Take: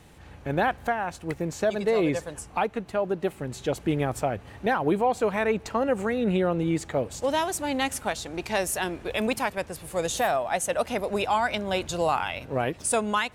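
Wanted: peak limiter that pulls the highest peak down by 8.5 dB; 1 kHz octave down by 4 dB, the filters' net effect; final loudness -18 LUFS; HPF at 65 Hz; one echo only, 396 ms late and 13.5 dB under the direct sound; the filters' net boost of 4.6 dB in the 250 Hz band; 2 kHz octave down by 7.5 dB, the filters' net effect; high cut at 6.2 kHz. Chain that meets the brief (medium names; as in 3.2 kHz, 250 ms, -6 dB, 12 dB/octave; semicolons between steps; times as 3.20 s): high-pass 65 Hz; low-pass 6.2 kHz; peaking EQ 250 Hz +6.5 dB; peaking EQ 1 kHz -4.5 dB; peaking EQ 2 kHz -8.5 dB; peak limiter -19.5 dBFS; delay 396 ms -13.5 dB; trim +12 dB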